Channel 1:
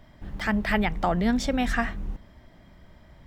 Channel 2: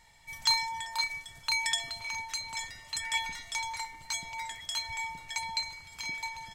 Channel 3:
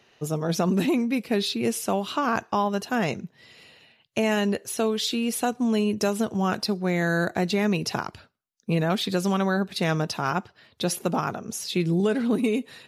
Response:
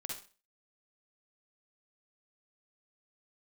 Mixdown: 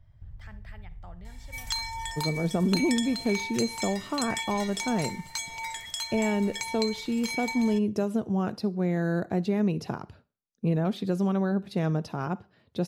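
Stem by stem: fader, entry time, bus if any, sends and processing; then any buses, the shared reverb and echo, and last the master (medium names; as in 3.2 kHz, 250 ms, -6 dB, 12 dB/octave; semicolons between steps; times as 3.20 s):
-19.5 dB, 0.00 s, send -9 dB, resonant low shelf 160 Hz +13.5 dB, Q 3; compression 6:1, threshold -22 dBFS, peak gain reduction 12 dB
+2.0 dB, 1.25 s, send -14.5 dB, treble shelf 8 kHz +6.5 dB; compression 5:1, threshold -33 dBFS, peak gain reduction 11.5 dB
-8.5 dB, 1.95 s, send -17.5 dB, tilt shelf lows +7.5 dB, about 930 Hz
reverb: on, RT60 0.35 s, pre-delay 44 ms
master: none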